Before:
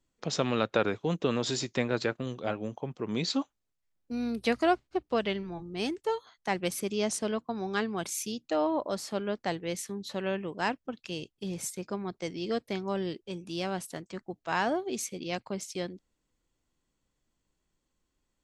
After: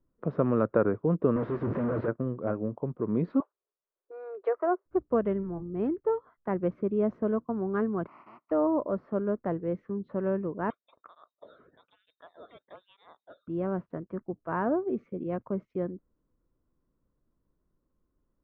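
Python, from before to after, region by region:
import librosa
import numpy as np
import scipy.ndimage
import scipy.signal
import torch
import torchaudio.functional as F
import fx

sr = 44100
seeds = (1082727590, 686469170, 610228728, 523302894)

y = fx.chain(x, sr, fx.clip_1bit(),
    fx.highpass(hz=88.0, slope=12),
    fx.doppler_dist(depth_ms=0.23), at=(1.36, 2.08))
y = fx.chain(y, sr, fx.ellip_highpass(hz=380.0, order=4, stop_db=40),
    fx.env_lowpass_down(base_hz=1600.0, full_db=-24.5), at=(3.4, 4.86))
y = fx.spec_flatten(y, sr, power=0.11, at=(8.06, 8.5), fade=0.02)
y = fx.bandpass_edges(y, sr, low_hz=380.0, high_hz=5000.0, at=(8.06, 8.5), fade=0.02)
y = fx.fixed_phaser(y, sr, hz=2400.0, stages=8, at=(8.06, 8.5), fade=0.02)
y = fx.chain(y, sr, fx.hum_notches(base_hz=50, count=4),
    fx.freq_invert(carrier_hz=3900),
    fx.flanger_cancel(hz=1.1, depth_ms=1.2), at=(10.7, 13.48))
y = scipy.signal.sosfilt(scipy.signal.butter(4, 1200.0, 'lowpass', fs=sr, output='sos'), y)
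y = fx.peak_eq(y, sr, hz=800.0, db=-11.0, octaves=0.43)
y = F.gain(torch.from_numpy(y), 4.5).numpy()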